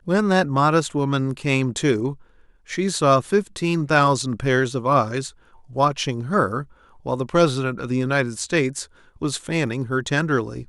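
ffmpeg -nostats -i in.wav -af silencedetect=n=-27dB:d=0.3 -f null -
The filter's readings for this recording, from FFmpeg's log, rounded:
silence_start: 2.13
silence_end: 2.71 | silence_duration: 0.58
silence_start: 5.28
silence_end: 5.76 | silence_duration: 0.48
silence_start: 6.62
silence_end: 7.06 | silence_duration: 0.44
silence_start: 8.84
silence_end: 9.22 | silence_duration: 0.38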